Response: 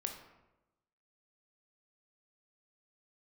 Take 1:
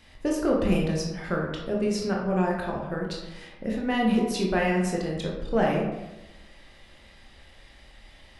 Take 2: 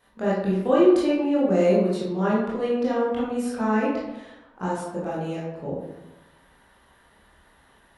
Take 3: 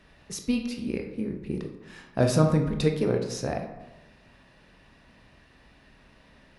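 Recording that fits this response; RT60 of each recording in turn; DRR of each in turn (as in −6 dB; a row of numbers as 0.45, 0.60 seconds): 3; 1.0, 1.0, 1.0 seconds; −2.0, −8.0, 3.5 decibels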